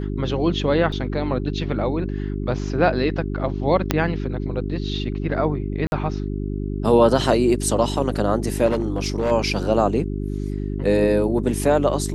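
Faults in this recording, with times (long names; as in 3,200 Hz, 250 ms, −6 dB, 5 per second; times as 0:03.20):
mains hum 50 Hz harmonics 8 −26 dBFS
0:00.92: drop-out 4.3 ms
0:02.59: drop-out 2.5 ms
0:03.91: click −3 dBFS
0:05.87–0:05.92: drop-out 51 ms
0:08.66–0:09.32: clipping −16.5 dBFS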